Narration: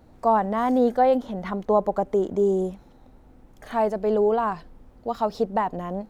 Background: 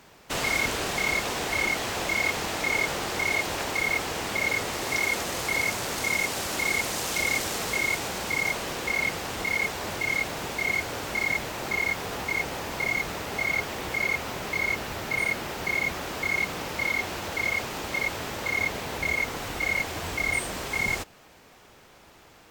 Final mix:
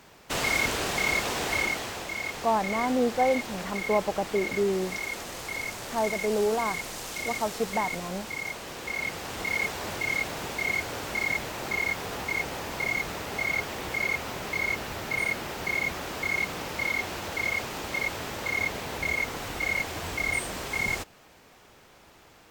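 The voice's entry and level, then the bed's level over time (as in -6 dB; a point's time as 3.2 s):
2.20 s, -5.0 dB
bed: 1.54 s 0 dB
2.07 s -7.5 dB
8.6 s -7.5 dB
9.57 s -1.5 dB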